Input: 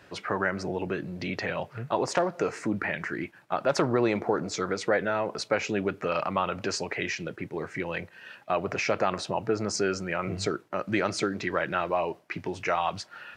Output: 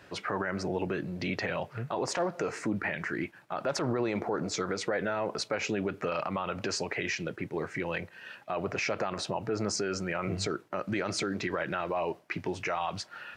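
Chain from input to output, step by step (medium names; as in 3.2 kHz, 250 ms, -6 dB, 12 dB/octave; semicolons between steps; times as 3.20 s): peak limiter -21 dBFS, peak gain reduction 11 dB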